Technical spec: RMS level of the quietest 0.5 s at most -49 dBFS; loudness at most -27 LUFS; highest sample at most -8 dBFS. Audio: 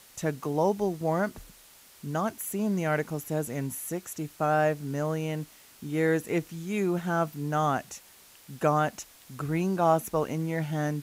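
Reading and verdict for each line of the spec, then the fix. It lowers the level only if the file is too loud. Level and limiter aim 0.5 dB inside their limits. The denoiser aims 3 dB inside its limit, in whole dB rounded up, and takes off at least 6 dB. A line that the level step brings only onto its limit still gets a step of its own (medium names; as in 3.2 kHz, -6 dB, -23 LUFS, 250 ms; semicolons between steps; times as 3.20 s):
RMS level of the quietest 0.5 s -54 dBFS: pass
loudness -29.0 LUFS: pass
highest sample -11.5 dBFS: pass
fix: none needed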